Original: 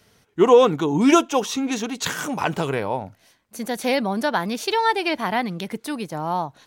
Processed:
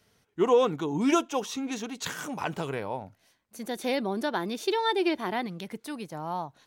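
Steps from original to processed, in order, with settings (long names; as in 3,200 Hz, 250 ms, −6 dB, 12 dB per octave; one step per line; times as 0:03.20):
0:03.67–0:05.47: hollow resonant body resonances 360/3,600 Hz, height 12 dB
level −8.5 dB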